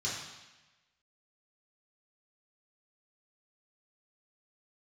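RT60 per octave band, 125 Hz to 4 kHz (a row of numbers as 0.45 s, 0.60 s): 1.2 s, 1.1 s, 1.1 s, 1.1 s, 1.2 s, 1.1 s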